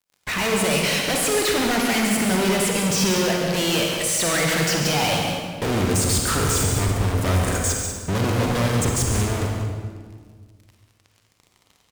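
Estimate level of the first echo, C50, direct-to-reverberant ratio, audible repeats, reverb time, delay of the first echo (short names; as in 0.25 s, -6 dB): -8.5 dB, 0.5 dB, -0.5 dB, 2, 1.7 s, 0.14 s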